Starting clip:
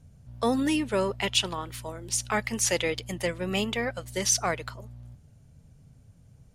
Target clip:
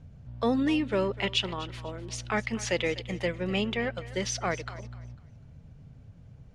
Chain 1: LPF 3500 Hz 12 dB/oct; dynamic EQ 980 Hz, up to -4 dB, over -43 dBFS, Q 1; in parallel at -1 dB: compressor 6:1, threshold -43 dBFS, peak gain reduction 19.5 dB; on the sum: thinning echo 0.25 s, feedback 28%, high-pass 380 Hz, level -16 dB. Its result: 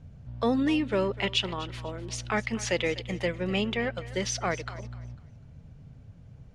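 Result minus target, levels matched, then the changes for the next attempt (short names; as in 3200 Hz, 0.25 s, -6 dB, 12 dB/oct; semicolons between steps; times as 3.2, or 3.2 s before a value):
compressor: peak gain reduction -8 dB
change: compressor 6:1, threshold -52.5 dBFS, peak gain reduction 27.5 dB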